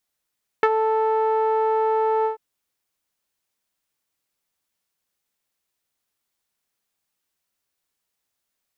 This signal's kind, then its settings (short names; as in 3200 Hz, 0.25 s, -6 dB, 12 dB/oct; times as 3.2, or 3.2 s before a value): synth note saw A4 12 dB/oct, low-pass 930 Hz, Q 2, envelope 1 oct, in 0.07 s, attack 1.4 ms, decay 0.05 s, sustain -7.5 dB, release 0.12 s, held 1.62 s